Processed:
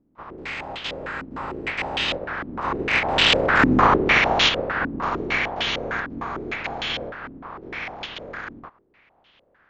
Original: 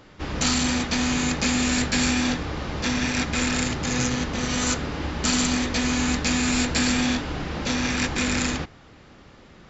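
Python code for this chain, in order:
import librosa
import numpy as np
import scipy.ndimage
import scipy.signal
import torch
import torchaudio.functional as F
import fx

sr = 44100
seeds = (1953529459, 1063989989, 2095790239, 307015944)

y = fx.spec_clip(x, sr, under_db=20)
y = fx.doppler_pass(y, sr, speed_mps=26, closest_m=9.3, pass_at_s=3.79)
y = fx.filter_held_lowpass(y, sr, hz=6.6, low_hz=270.0, high_hz=3200.0)
y = F.gain(torch.from_numpy(y), 9.0).numpy()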